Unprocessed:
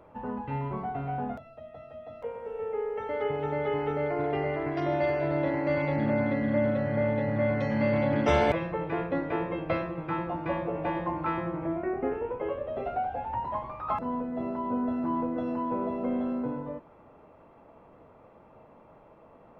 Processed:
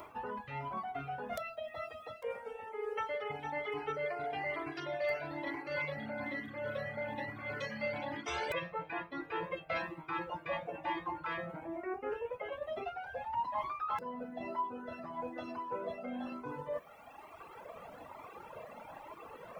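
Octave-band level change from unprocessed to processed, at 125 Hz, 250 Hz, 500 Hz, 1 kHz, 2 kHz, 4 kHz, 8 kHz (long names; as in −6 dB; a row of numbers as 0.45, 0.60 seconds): −17.0 dB, −15.5 dB, −10.0 dB, −6.0 dB, −3.0 dB, −1.5 dB, can't be measured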